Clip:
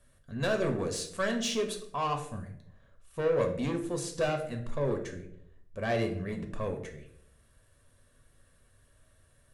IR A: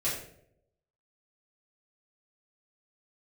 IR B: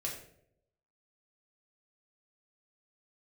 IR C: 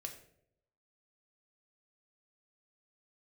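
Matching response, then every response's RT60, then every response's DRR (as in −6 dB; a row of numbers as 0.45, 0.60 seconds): C; 0.75, 0.75, 0.75 seconds; −10.0, −2.5, 3.5 decibels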